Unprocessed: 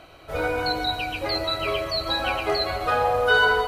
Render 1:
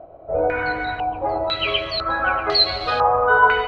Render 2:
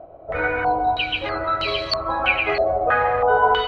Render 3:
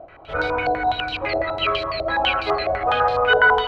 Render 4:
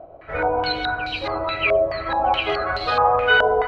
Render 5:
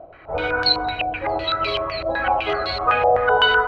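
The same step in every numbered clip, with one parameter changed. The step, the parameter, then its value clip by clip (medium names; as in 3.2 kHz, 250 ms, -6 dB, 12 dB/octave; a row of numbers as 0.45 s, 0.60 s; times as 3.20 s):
step-sequenced low-pass, rate: 2 Hz, 3.1 Hz, 12 Hz, 4.7 Hz, 7.9 Hz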